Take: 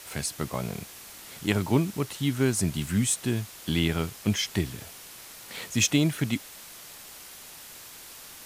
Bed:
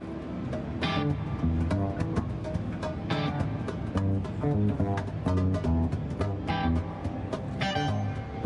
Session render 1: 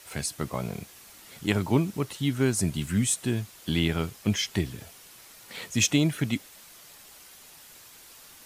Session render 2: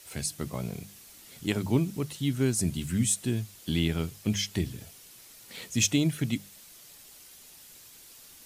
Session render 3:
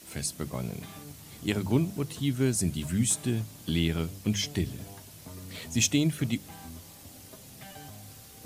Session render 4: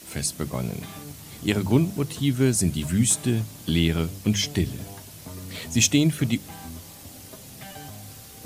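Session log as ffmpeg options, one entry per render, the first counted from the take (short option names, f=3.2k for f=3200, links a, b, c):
-af "afftdn=nr=6:nf=-46"
-af "equalizer=f=1.1k:w=0.51:g=-7.5,bandreject=f=50:t=h:w=6,bandreject=f=100:t=h:w=6,bandreject=f=150:t=h:w=6,bandreject=f=200:t=h:w=6"
-filter_complex "[1:a]volume=-18.5dB[a];[0:a][a]amix=inputs=2:normalize=0"
-af "volume=5.5dB"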